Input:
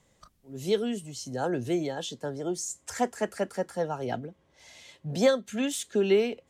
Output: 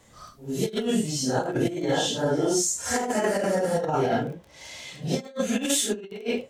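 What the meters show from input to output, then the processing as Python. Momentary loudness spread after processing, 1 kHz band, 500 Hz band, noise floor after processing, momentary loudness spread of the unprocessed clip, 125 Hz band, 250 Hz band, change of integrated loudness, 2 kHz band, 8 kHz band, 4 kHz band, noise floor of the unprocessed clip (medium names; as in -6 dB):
11 LU, +5.5 dB, +1.5 dB, -52 dBFS, 12 LU, +6.0 dB, +4.5 dB, +4.0 dB, +5.5 dB, +10.0 dB, +7.0 dB, -67 dBFS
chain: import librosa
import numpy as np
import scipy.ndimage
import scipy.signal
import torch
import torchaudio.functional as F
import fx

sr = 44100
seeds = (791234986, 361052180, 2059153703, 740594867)

y = fx.phase_scramble(x, sr, seeds[0], window_ms=200)
y = fx.over_compress(y, sr, threshold_db=-32.0, ratio=-0.5)
y = fx.dmg_crackle(y, sr, seeds[1], per_s=14.0, level_db=-45.0)
y = y * 10.0 ** (7.0 / 20.0)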